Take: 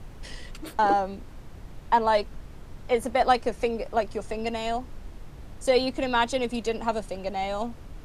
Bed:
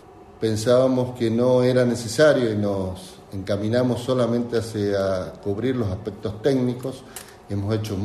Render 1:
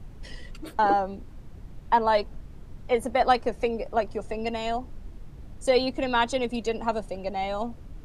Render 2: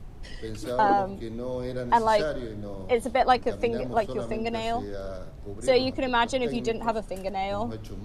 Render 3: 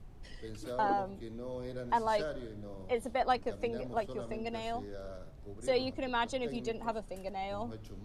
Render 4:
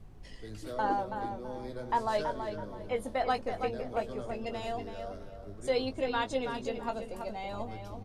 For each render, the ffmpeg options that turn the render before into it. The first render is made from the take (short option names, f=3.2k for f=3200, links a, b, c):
-af "afftdn=nr=7:nf=-44"
-filter_complex "[1:a]volume=-14.5dB[a];[0:a][a]amix=inputs=2:normalize=0"
-af "volume=-9dB"
-filter_complex "[0:a]asplit=2[a][b];[b]adelay=19,volume=-8.5dB[c];[a][c]amix=inputs=2:normalize=0,asplit=2[d][e];[e]adelay=328,lowpass=f=3.5k:p=1,volume=-7dB,asplit=2[f][g];[g]adelay=328,lowpass=f=3.5k:p=1,volume=0.29,asplit=2[h][i];[i]adelay=328,lowpass=f=3.5k:p=1,volume=0.29,asplit=2[j][k];[k]adelay=328,lowpass=f=3.5k:p=1,volume=0.29[l];[d][f][h][j][l]amix=inputs=5:normalize=0"